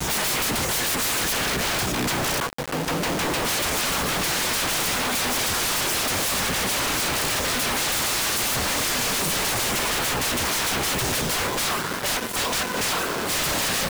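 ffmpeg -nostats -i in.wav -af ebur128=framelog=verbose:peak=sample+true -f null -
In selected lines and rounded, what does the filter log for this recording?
Integrated loudness:
  I:         -22.3 LUFS
  Threshold: -32.2 LUFS
Loudness range:
  LRA:         1.4 LU
  Threshold: -42.2 LUFS
  LRA low:   -23.0 LUFS
  LRA high:  -21.6 LUFS
Sample peak:
  Peak:      -21.8 dBFS
True peak:
  Peak:      -15.4 dBFS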